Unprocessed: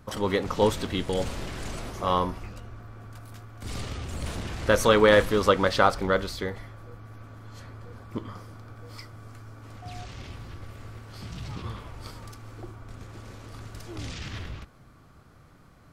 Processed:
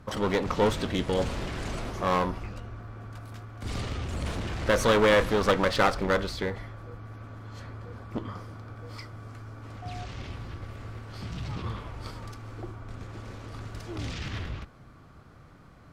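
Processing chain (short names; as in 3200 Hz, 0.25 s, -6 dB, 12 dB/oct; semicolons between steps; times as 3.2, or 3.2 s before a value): in parallel at -10 dB: wavefolder -18 dBFS; on the sum: high shelf 7100 Hz -10.5 dB; one-sided clip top -28 dBFS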